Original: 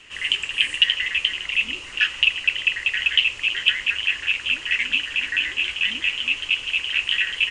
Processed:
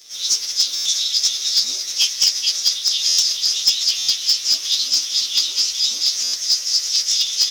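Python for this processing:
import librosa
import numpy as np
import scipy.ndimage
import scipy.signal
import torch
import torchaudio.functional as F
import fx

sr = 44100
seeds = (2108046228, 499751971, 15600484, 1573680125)

p1 = fx.partial_stretch(x, sr, pct=114)
p2 = fx.air_absorb(p1, sr, metres=77.0)
p3 = p2 + fx.echo_stepped(p2, sr, ms=214, hz=1400.0, octaves=0.7, feedback_pct=70, wet_db=-3, dry=0)
p4 = fx.formant_shift(p3, sr, semitones=6)
p5 = fx.riaa(p4, sr, side='recording')
p6 = p5 + 10.0 ** (-23.0 / 20.0) * np.pad(p5, (int(156 * sr / 1000.0), 0))[:len(p5)]
p7 = (np.mod(10.0 ** (8.0 / 20.0) * p6 + 1.0, 2.0) - 1.0) / 10.0 ** (8.0 / 20.0)
p8 = p6 + (p7 * 10.0 ** (-11.0 / 20.0))
y = fx.buffer_glitch(p8, sr, at_s=(0.75, 3.08, 3.98, 6.23), block=512, repeats=8)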